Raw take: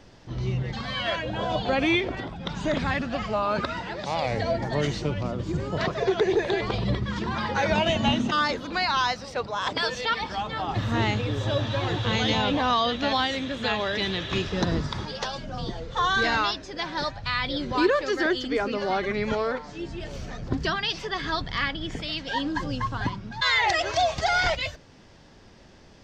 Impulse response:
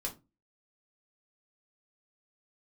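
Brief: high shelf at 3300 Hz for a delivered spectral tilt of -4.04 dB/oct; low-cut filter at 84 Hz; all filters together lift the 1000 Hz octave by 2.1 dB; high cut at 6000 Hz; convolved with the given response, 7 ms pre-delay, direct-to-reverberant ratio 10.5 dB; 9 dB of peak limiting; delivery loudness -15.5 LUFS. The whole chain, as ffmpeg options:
-filter_complex "[0:a]highpass=84,lowpass=6k,equalizer=f=1k:t=o:g=3.5,highshelf=f=3.3k:g=-7.5,alimiter=limit=-19.5dB:level=0:latency=1,asplit=2[a][b];[1:a]atrim=start_sample=2205,adelay=7[c];[b][c]afir=irnorm=-1:irlink=0,volume=-11.5dB[d];[a][d]amix=inputs=2:normalize=0,volume=13.5dB"

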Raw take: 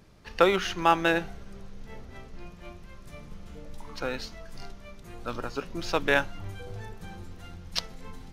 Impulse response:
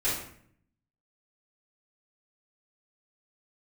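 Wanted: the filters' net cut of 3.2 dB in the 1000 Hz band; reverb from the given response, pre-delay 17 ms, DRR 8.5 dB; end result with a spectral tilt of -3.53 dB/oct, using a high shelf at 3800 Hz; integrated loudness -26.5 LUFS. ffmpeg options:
-filter_complex "[0:a]equalizer=f=1k:t=o:g=-3.5,highshelf=f=3.8k:g=-8.5,asplit=2[a][b];[1:a]atrim=start_sample=2205,adelay=17[c];[b][c]afir=irnorm=-1:irlink=0,volume=-18dB[d];[a][d]amix=inputs=2:normalize=0,volume=3.5dB"

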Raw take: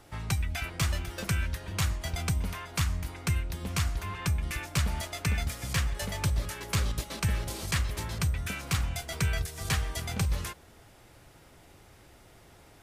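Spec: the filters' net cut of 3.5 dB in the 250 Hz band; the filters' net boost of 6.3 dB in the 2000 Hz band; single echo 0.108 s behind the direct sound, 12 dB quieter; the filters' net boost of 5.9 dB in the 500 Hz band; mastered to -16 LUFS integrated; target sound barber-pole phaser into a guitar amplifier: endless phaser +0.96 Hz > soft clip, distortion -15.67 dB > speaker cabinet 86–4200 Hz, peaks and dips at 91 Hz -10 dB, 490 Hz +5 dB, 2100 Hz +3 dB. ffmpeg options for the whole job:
-filter_complex "[0:a]equalizer=f=250:t=o:g=-7,equalizer=f=500:t=o:g=6,equalizer=f=2k:t=o:g=5.5,aecho=1:1:108:0.251,asplit=2[a][b];[b]afreqshift=0.96[c];[a][c]amix=inputs=2:normalize=1,asoftclip=threshold=-25.5dB,highpass=86,equalizer=f=91:t=q:w=4:g=-10,equalizer=f=490:t=q:w=4:g=5,equalizer=f=2.1k:t=q:w=4:g=3,lowpass=f=4.2k:w=0.5412,lowpass=f=4.2k:w=1.3066,volume=21dB"

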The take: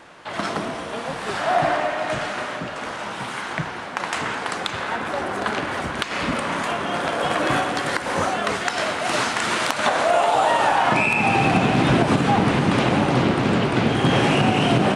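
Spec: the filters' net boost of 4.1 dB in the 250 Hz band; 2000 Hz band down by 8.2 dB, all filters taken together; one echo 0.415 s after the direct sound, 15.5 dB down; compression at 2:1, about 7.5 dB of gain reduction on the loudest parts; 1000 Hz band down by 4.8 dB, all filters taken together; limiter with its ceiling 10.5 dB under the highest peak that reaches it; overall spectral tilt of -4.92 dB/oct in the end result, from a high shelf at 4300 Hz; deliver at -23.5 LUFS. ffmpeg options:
-af "equalizer=f=250:t=o:g=5.5,equalizer=f=1k:t=o:g=-5,equalizer=f=2k:t=o:g=-7.5,highshelf=f=4.3k:g=-8.5,acompressor=threshold=-26dB:ratio=2,alimiter=limit=-22.5dB:level=0:latency=1,aecho=1:1:415:0.168,volume=8dB"

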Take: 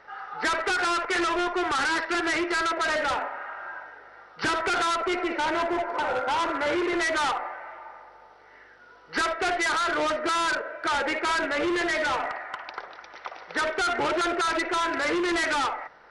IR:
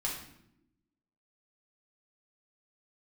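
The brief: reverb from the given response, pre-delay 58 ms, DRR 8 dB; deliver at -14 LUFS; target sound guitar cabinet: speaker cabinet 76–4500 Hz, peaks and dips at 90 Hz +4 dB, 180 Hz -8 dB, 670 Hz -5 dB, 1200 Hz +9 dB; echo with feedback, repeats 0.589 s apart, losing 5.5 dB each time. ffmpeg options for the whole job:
-filter_complex "[0:a]aecho=1:1:589|1178|1767|2356|2945|3534|4123:0.531|0.281|0.149|0.079|0.0419|0.0222|0.0118,asplit=2[a][b];[1:a]atrim=start_sample=2205,adelay=58[c];[b][c]afir=irnorm=-1:irlink=0,volume=-12dB[d];[a][d]amix=inputs=2:normalize=0,highpass=76,equalizer=f=90:t=q:w=4:g=4,equalizer=f=180:t=q:w=4:g=-8,equalizer=f=670:t=q:w=4:g=-5,equalizer=f=1.2k:t=q:w=4:g=9,lowpass=f=4.5k:w=0.5412,lowpass=f=4.5k:w=1.3066,volume=8.5dB"

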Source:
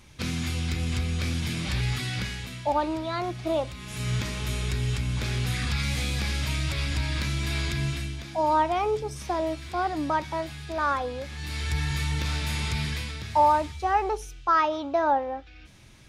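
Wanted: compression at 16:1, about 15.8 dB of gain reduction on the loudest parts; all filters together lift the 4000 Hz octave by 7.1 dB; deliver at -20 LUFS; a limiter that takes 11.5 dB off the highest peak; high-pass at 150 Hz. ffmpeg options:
-af "highpass=150,equalizer=f=4k:t=o:g=8.5,acompressor=threshold=-32dB:ratio=16,volume=19dB,alimiter=limit=-12.5dB:level=0:latency=1"

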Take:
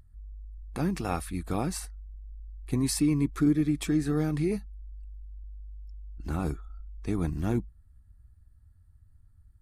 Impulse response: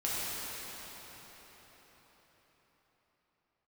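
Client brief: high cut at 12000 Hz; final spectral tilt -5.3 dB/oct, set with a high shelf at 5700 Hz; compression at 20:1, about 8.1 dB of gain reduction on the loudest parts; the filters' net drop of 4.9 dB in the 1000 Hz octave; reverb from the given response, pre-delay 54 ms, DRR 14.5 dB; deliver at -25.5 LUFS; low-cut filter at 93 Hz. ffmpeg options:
-filter_complex "[0:a]highpass=93,lowpass=12k,equalizer=f=1k:t=o:g=-7.5,highshelf=f=5.7k:g=4.5,acompressor=threshold=-28dB:ratio=20,asplit=2[a][b];[1:a]atrim=start_sample=2205,adelay=54[c];[b][c]afir=irnorm=-1:irlink=0,volume=-22.5dB[d];[a][d]amix=inputs=2:normalize=0,volume=9.5dB"

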